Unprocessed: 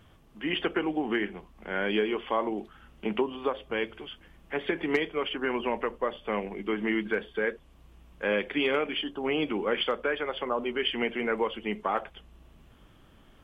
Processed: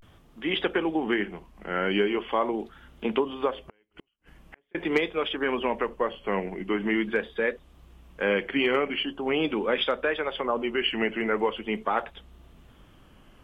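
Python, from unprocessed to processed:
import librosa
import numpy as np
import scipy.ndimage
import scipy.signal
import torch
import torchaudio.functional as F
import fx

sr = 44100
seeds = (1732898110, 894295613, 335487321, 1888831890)

y = fx.vibrato(x, sr, rate_hz=0.43, depth_cents=98.0)
y = fx.gate_flip(y, sr, shuts_db=-33.0, range_db=-40, at=(3.55, 4.75))
y = y * 10.0 ** (2.5 / 20.0)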